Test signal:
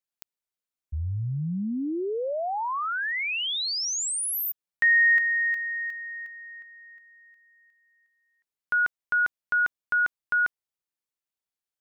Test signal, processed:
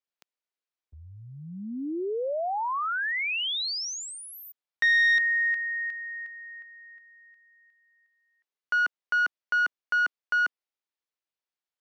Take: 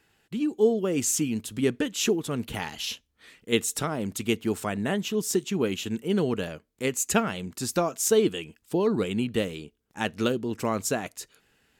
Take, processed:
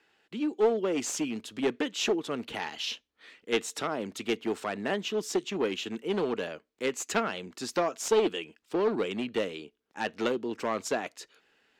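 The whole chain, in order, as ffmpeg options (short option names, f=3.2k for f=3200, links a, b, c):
-filter_complex "[0:a]aeval=exprs='clip(val(0),-1,0.0794)':c=same,acrossover=split=250 5800:gain=0.126 1 0.158[a][b][c];[a][b][c]amix=inputs=3:normalize=0"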